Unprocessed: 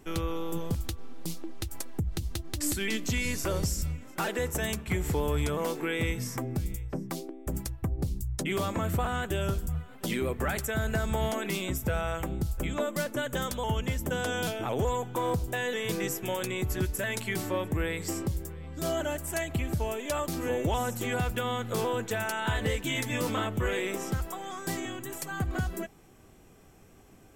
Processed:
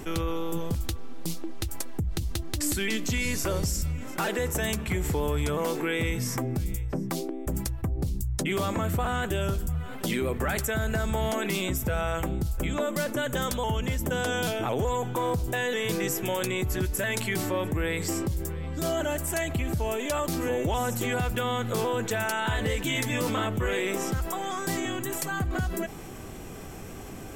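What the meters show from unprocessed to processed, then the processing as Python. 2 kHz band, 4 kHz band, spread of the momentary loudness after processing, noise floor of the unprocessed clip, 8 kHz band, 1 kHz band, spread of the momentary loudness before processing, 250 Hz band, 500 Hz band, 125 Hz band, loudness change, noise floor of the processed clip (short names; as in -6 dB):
+3.0 dB, +3.0 dB, 5 LU, -54 dBFS, +3.5 dB, +2.5 dB, 6 LU, +3.0 dB, +2.5 dB, +2.0 dB, +2.5 dB, -40 dBFS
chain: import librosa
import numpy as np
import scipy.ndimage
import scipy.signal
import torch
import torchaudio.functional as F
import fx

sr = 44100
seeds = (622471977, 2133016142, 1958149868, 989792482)

y = fx.env_flatten(x, sr, amount_pct=50)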